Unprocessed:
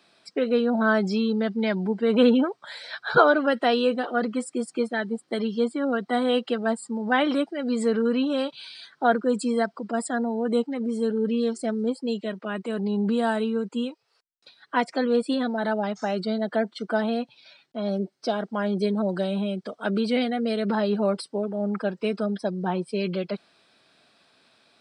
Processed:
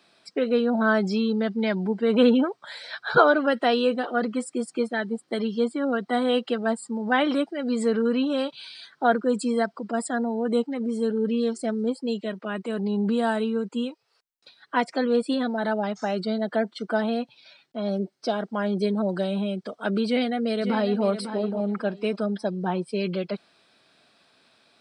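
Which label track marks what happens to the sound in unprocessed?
20.060000	21.050000	echo throw 550 ms, feedback 20%, level -9.5 dB

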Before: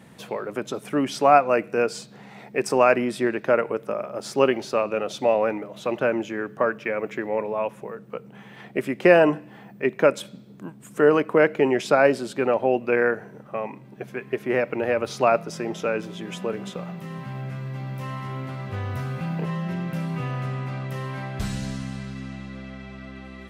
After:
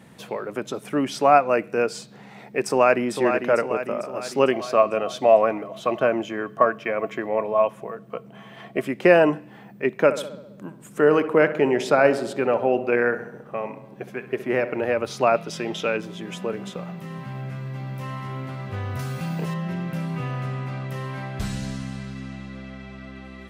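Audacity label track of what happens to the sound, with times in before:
2.640000	3.100000	echo throw 450 ms, feedback 55%, level -6.5 dB
4.510000	8.870000	small resonant body resonances 670/1100/3100 Hz, height 15 dB, ringing for 95 ms
10.030000	14.850000	filtered feedback delay 66 ms, feedback 66%, low-pass 2.1 kHz, level -12 dB
15.360000	15.970000	peaking EQ 3.3 kHz +10.5 dB 0.9 oct
18.990000	19.540000	tone controls bass 0 dB, treble +12 dB

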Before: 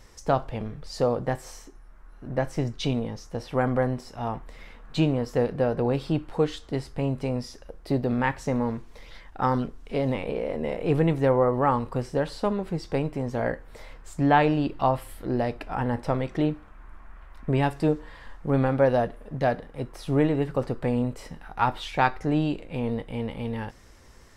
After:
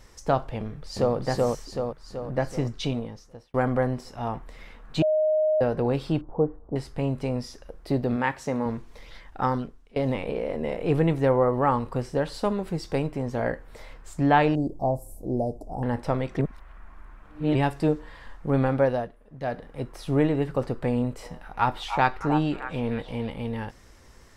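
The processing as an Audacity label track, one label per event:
0.580000	1.160000	echo throw 380 ms, feedback 55%, level -0.5 dB
2.760000	3.540000	fade out
5.020000	5.610000	bleep 620 Hz -19 dBFS
6.210000	6.760000	inverse Chebyshev low-pass stop band from 3.1 kHz, stop band 60 dB
8.160000	8.660000	high-pass 190 Hz 6 dB/octave
9.410000	9.960000	fade out, to -23.5 dB
12.340000	13.070000	treble shelf 5.9 kHz +7 dB
14.550000	15.830000	elliptic band-stop 710–6300 Hz, stop band 60 dB
16.390000	17.550000	reverse
18.770000	19.720000	dip -11.5 dB, fades 0.36 s
20.920000	23.300000	repeats whose band climbs or falls 307 ms, band-pass from 910 Hz, each repeat 0.7 oct, level -6.5 dB

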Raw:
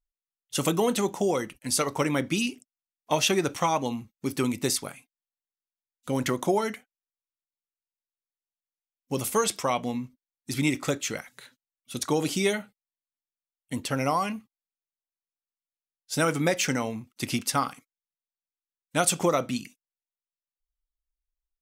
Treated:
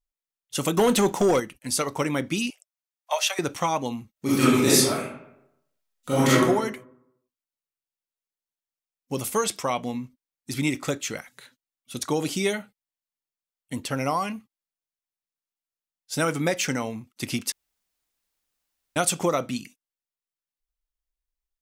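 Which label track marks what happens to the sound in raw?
0.770000	1.400000	waveshaping leveller passes 2
2.500000	3.390000	steep high-pass 530 Hz 72 dB/octave
4.120000	6.420000	reverb throw, RT60 0.81 s, DRR -10.5 dB
17.520000	18.960000	room tone

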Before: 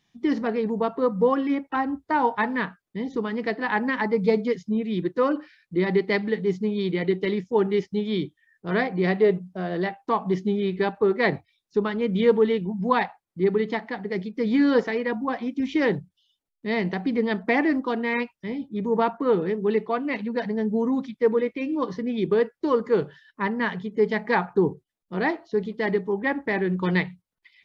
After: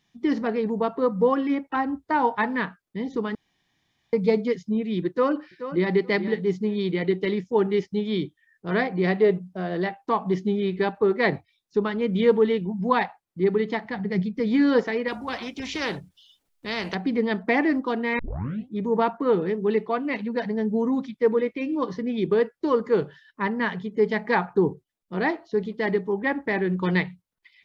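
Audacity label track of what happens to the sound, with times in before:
3.350000	4.130000	room tone
5.080000	5.920000	echo throw 430 ms, feedback 15%, level -11.5 dB
13.850000	14.400000	resonant low shelf 220 Hz +8.5 dB, Q 1.5
15.080000	16.950000	spectrum-flattening compressor 2:1
18.190000	18.190000	tape start 0.51 s

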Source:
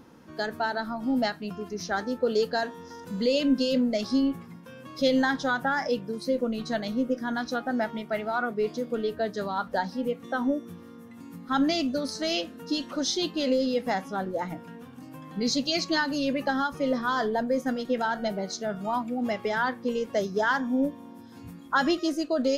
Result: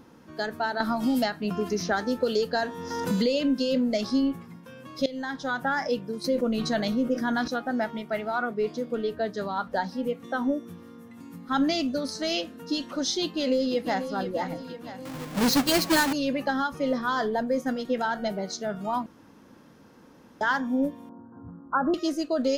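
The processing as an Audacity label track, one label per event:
0.800000	4.100000	three bands compressed up and down depth 100%
5.060000	5.700000	fade in, from -19 dB
6.240000	7.480000	level flattener amount 50%
8.440000	9.820000	treble shelf 7.6 kHz -5 dB
13.220000	14.120000	echo throw 490 ms, feedback 60%, level -10 dB
15.050000	16.130000	square wave that keeps the level
19.060000	20.410000	room tone
21.090000	21.940000	steep low-pass 1.5 kHz 72 dB/octave

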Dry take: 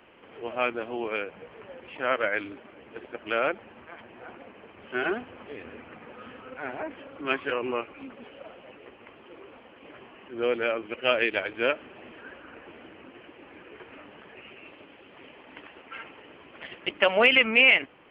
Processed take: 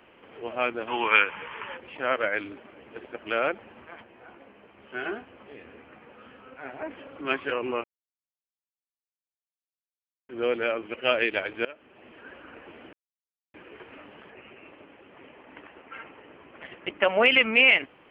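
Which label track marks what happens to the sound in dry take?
0.880000	1.770000	time-frequency box 820–3600 Hz +14 dB
4.030000	6.820000	feedback comb 68 Hz, decay 0.18 s, mix 80%
7.840000	10.290000	mute
11.650000	12.410000	fade in, from -22.5 dB
12.930000	13.540000	mute
14.300000	17.260000	low-pass 2.4 kHz

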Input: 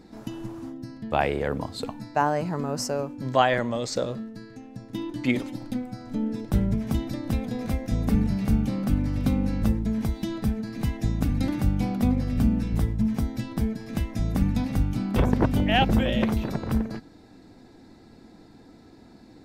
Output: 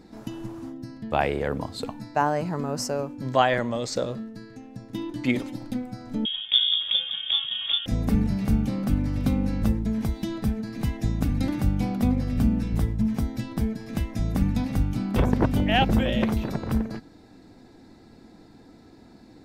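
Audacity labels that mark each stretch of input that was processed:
6.250000	7.860000	frequency inversion carrier 3.5 kHz

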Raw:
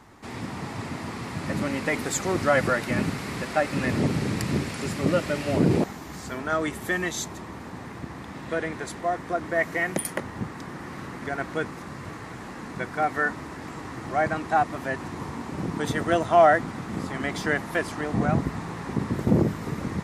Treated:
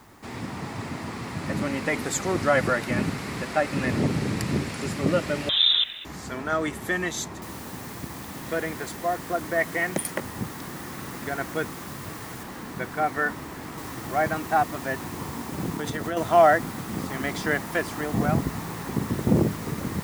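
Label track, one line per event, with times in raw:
5.490000	6.050000	frequency inversion carrier 3.8 kHz
7.420000	7.420000	noise floor step -63 dB -44 dB
12.430000	13.780000	treble shelf 4 kHz -5.5 dB
15.760000	16.170000	compression, threshold -25 dBFS

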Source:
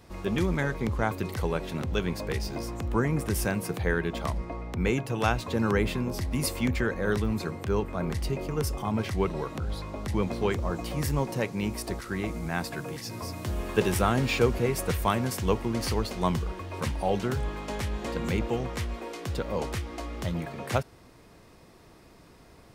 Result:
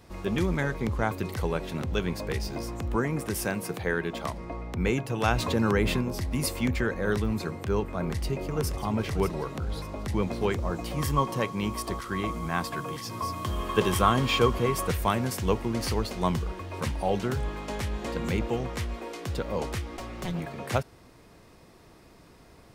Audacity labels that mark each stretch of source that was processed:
2.960000	4.430000	high-pass 160 Hz 6 dB/octave
5.280000	6.010000	level flattener amount 50%
7.820000	8.760000	echo throw 590 ms, feedback 40%, level -9.5 dB
10.980000	14.880000	small resonant body resonances 1.1/3.2 kHz, height 16 dB
19.970000	20.400000	comb filter that takes the minimum delay 5.4 ms

